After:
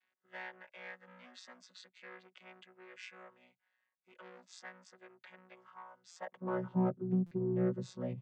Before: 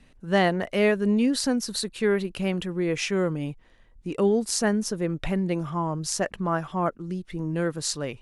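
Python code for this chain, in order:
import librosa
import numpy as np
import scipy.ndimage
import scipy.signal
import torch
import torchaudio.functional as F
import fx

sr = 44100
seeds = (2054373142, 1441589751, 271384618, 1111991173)

p1 = fx.chord_vocoder(x, sr, chord='bare fifth', root=47)
p2 = fx.high_shelf(p1, sr, hz=2100.0, db=-9.5)
p3 = 10.0 ** (-28.0 / 20.0) * np.tanh(p2 / 10.0 ** (-28.0 / 20.0))
p4 = p2 + F.gain(torch.from_numpy(p3), -3.0).numpy()
p5 = fx.filter_sweep_highpass(p4, sr, from_hz=1700.0, to_hz=130.0, start_s=6.11, end_s=6.71, q=1.1)
p6 = fx.buffer_glitch(p5, sr, at_s=(6.11, 7.26), block=256, repeats=8)
y = F.gain(torch.from_numpy(p6), -7.0).numpy()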